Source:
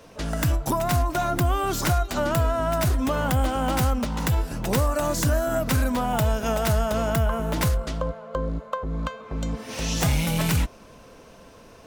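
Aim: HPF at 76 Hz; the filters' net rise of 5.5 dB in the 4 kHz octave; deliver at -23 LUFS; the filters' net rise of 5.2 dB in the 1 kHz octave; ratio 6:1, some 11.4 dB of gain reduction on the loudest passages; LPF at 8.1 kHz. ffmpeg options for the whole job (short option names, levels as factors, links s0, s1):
-af "highpass=76,lowpass=8100,equalizer=f=1000:t=o:g=6.5,equalizer=f=4000:t=o:g=7,acompressor=threshold=0.0316:ratio=6,volume=3.16"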